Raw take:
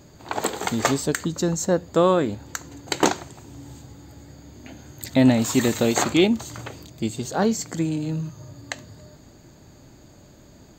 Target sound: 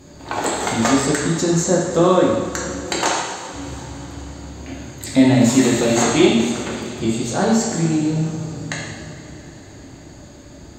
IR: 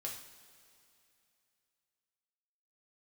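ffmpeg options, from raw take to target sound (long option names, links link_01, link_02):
-filter_complex "[0:a]asettb=1/sr,asplit=3[link_01][link_02][link_03];[link_01]atrim=end=2.984[link_04];[link_02]atrim=start=2.98:end=3.53,asetpts=PTS-STARTPTS,afade=type=in:duration=0.004:curve=qsin,afade=type=out:start_time=0.546:duration=0.004:curve=qsin,highpass=640[link_05];[link_03]atrim=start=3.526[link_06];[link_04][link_05]acrossfade=duration=0.004:curve1=hsin:curve2=qsin[link_07];[link_07][link_06]acrossfade=duration=0.004:curve1=qsin:curve2=hsin,asplit=2[link_08][link_09];[link_09]acompressor=threshold=-28dB:ratio=6,volume=-1dB[link_10];[link_08][link_10]amix=inputs=2:normalize=0[link_11];[1:a]atrim=start_sample=2205,asetrate=22491,aresample=44100[link_12];[link_11][link_12]afir=irnorm=-1:irlink=0,volume=-1dB"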